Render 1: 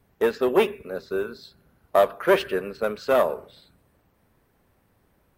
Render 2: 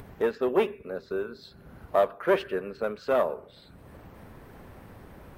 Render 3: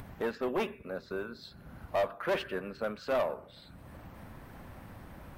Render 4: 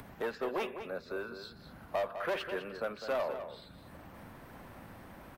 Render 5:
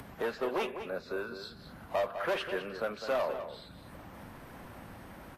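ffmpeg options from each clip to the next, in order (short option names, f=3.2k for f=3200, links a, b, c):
-af "highshelf=f=3.6k:g=-9.5,acompressor=mode=upward:threshold=-25dB:ratio=2.5,volume=-4dB"
-af "equalizer=f=420:t=o:w=0.45:g=-8.5,asoftclip=type=tanh:threshold=-23.5dB"
-filter_complex "[0:a]acrossover=split=170|340[a][b][c];[a]acompressor=threshold=-57dB:ratio=4[d];[b]acompressor=threshold=-53dB:ratio=4[e];[c]acompressor=threshold=-30dB:ratio=4[f];[d][e][f]amix=inputs=3:normalize=0,asplit=2[g][h];[h]adelay=204.1,volume=-9dB,highshelf=f=4k:g=-4.59[i];[g][i]amix=inputs=2:normalize=0"
-af "volume=2.5dB" -ar 44100 -c:a libvorbis -b:a 32k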